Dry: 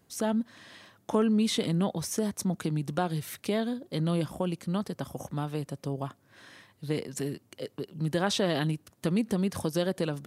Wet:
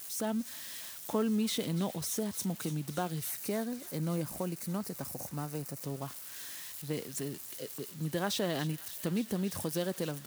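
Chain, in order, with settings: zero-crossing glitches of -29.5 dBFS; 3.31–5.82 s: peaking EQ 3.3 kHz -12.5 dB 0.34 oct; feedback echo behind a high-pass 288 ms, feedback 84%, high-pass 1.6 kHz, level -15 dB; trim -5.5 dB

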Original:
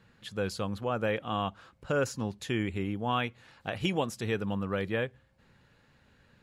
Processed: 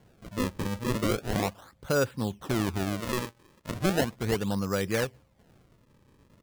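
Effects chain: resampled via 8 kHz; decimation with a swept rate 35×, swing 160% 0.37 Hz; 3.00–3.71 s: bass shelf 350 Hz -9 dB; trim +3 dB

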